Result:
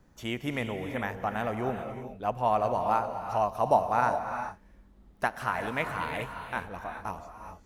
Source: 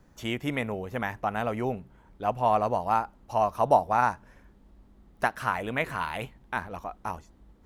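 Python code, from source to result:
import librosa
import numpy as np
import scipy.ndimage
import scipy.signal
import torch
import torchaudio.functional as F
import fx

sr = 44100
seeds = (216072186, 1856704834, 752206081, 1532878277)

y = fx.rev_gated(x, sr, seeds[0], gate_ms=440, shape='rising', drr_db=6.0)
y = y * librosa.db_to_amplitude(-2.5)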